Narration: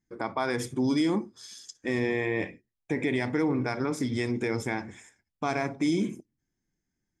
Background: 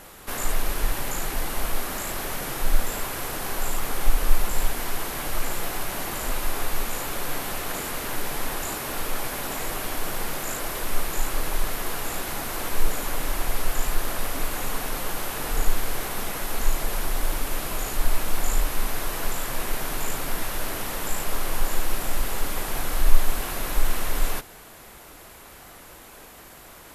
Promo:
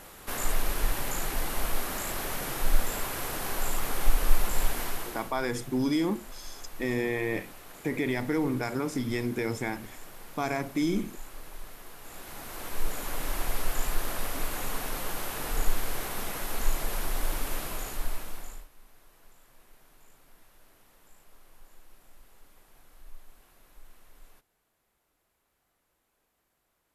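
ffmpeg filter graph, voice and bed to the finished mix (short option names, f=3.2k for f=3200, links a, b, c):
-filter_complex "[0:a]adelay=4950,volume=-1.5dB[a];[1:a]volume=10.5dB,afade=t=out:st=4.8:d=0.53:silence=0.177828,afade=t=in:st=11.99:d=1.39:silence=0.211349,afade=t=out:st=17.52:d=1.16:silence=0.0501187[b];[a][b]amix=inputs=2:normalize=0"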